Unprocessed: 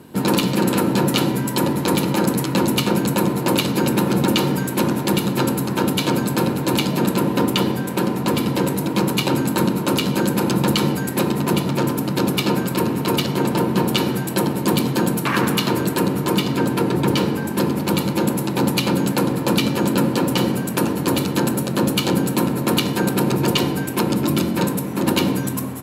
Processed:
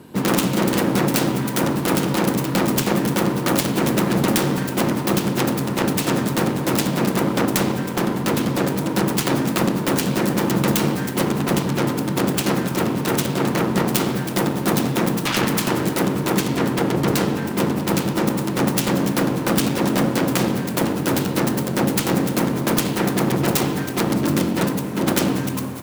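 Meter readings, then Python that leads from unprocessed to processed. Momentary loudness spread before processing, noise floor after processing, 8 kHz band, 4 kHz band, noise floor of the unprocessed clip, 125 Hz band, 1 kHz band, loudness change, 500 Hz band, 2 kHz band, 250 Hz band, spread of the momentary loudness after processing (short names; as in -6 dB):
2 LU, -26 dBFS, +1.0 dB, -3.0 dB, -25 dBFS, -1.0 dB, -0.5 dB, -0.5 dB, -0.5 dB, +0.5 dB, -1.0 dB, 3 LU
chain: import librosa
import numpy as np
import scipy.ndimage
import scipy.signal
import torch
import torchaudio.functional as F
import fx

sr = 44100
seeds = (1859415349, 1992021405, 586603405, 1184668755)

y = fx.self_delay(x, sr, depth_ms=0.72)
y = fx.rev_schroeder(y, sr, rt60_s=2.9, comb_ms=29, drr_db=16.5)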